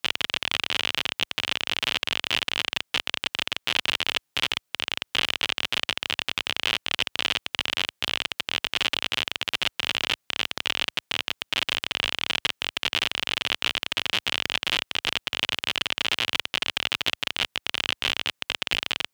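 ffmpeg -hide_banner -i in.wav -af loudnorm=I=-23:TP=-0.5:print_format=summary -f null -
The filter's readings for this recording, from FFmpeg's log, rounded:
Input Integrated:    -25.9 LUFS
Input True Peak:      -3.3 dBTP
Input LRA:             0.8 LU
Input Threshold:     -35.9 LUFS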